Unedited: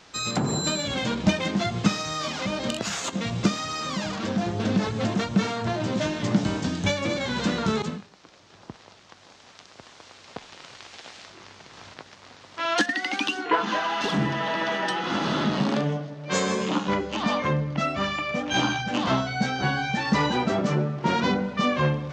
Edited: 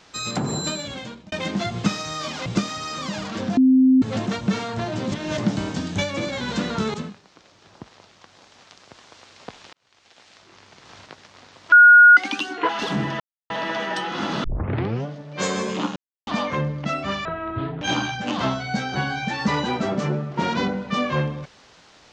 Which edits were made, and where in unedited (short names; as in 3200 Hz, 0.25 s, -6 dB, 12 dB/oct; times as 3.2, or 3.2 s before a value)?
0.62–1.32 fade out
2.46–3.34 cut
4.45–4.9 bleep 260 Hz -11 dBFS
6–6.26 reverse
10.61–11.87 fade in
12.6–13.05 bleep 1440 Hz -6 dBFS
13.57–13.91 cut
14.42 insert silence 0.30 s
15.36 tape start 0.62 s
16.88–17.19 mute
18.17–18.48 speed 55%